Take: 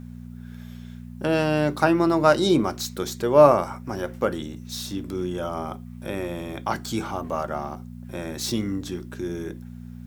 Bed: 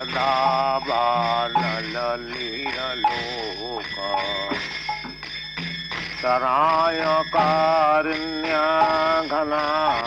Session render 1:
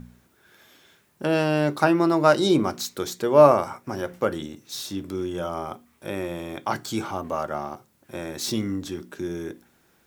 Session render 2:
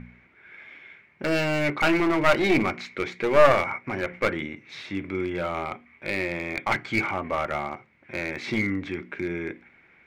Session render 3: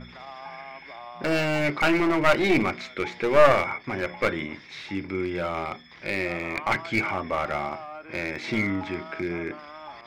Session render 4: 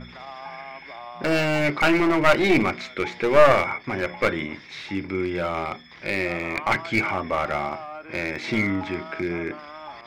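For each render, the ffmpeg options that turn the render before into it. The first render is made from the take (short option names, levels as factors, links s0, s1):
-af "bandreject=f=60:t=h:w=4,bandreject=f=120:t=h:w=4,bandreject=f=180:t=h:w=4,bandreject=f=240:t=h:w=4"
-af "lowpass=f=2200:t=q:w=12,aeval=exprs='clip(val(0),-1,0.0794)':c=same"
-filter_complex "[1:a]volume=0.0891[s0];[0:a][s0]amix=inputs=2:normalize=0"
-af "volume=1.33,alimiter=limit=0.794:level=0:latency=1"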